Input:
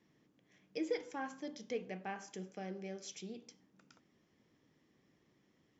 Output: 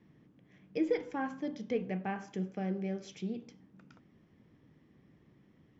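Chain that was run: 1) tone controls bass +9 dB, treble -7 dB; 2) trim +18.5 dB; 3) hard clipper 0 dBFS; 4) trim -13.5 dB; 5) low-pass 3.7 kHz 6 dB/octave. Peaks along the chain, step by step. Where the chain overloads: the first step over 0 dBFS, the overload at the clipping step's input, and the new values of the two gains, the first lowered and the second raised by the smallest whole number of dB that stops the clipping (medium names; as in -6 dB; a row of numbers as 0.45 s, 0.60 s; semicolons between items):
-24.0 dBFS, -5.5 dBFS, -5.5 dBFS, -19.0 dBFS, -19.0 dBFS; nothing clips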